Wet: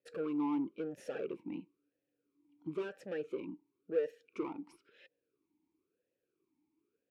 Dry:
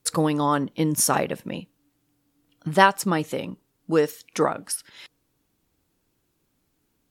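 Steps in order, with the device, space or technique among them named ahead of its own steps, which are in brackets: talk box (tube stage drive 25 dB, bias 0.3; vowel sweep e-u 0.98 Hz); tilt shelf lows +3.5 dB

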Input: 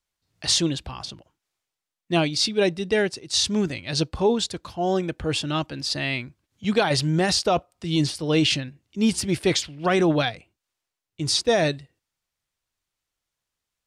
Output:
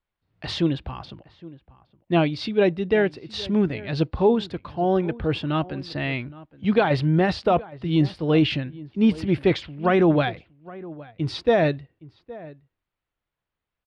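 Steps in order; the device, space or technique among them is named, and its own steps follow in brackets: shout across a valley (air absorption 400 m; outdoor echo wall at 140 m, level -19 dB); gain +3 dB

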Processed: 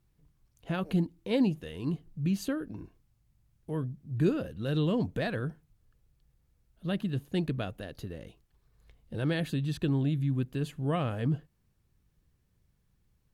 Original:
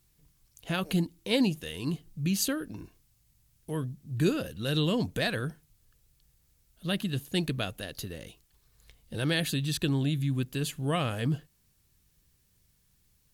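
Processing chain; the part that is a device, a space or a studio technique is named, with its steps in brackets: through cloth (high shelf 2600 Hz -16 dB)

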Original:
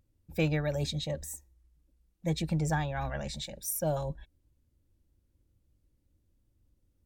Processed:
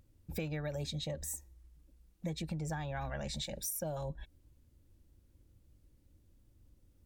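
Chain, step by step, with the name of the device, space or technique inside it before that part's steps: serial compression, peaks first (compressor 5:1, threshold -38 dBFS, peak gain reduction 13 dB; compressor 1.5:1, threshold -48 dBFS, peak gain reduction 5 dB); gain +6 dB

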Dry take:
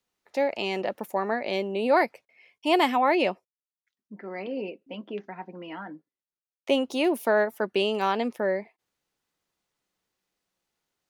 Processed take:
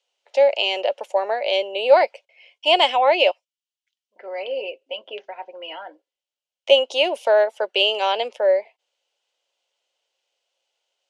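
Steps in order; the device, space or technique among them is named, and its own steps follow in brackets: 3.31–4.16 passive tone stack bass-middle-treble 10-0-10; phone speaker on a table (speaker cabinet 500–7800 Hz, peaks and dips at 560 Hz +7 dB, 1200 Hz -9 dB, 1800 Hz -7 dB, 3000 Hz +10 dB); gain +5.5 dB

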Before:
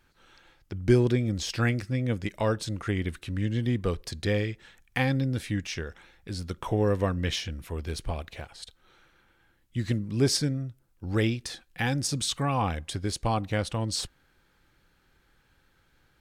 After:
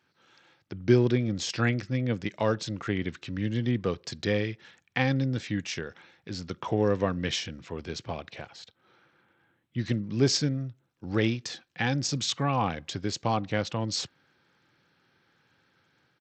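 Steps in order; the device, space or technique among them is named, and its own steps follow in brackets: 8.62–9.78 high shelf 3200 Hz -10.5 dB; Bluetooth headset (HPF 110 Hz 24 dB/oct; AGC gain up to 4 dB; downsampling 16000 Hz; gain -3.5 dB; SBC 64 kbps 32000 Hz)

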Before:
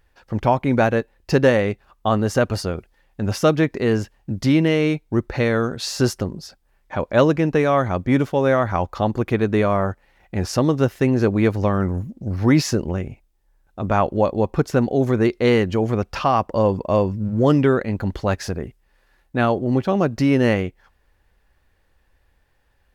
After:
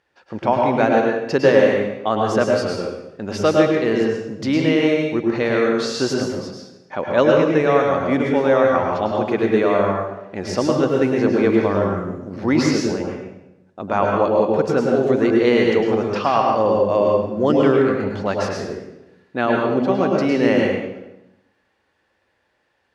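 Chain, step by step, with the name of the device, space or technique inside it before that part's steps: supermarket ceiling speaker (BPF 330–6400 Hz; reverb RT60 0.95 s, pre-delay 98 ms, DRR -0.5 dB); low shelf 190 Hz +9.5 dB; gain -1 dB

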